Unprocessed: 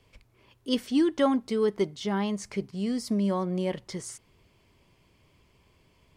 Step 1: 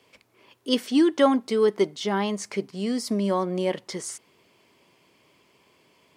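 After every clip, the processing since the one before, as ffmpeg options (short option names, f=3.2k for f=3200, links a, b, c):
-af "highpass=250,volume=5.5dB"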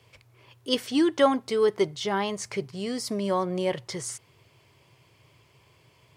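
-af "lowshelf=f=160:t=q:w=3:g=9.5"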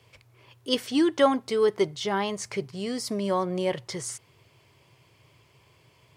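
-af anull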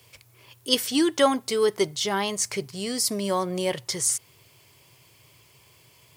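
-af "aemphasis=mode=production:type=75kf"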